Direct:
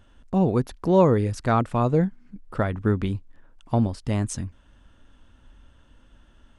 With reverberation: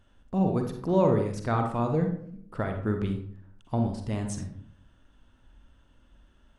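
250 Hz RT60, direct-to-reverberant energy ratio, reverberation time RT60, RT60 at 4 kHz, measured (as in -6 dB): 0.80 s, 4.0 dB, 0.60 s, 0.35 s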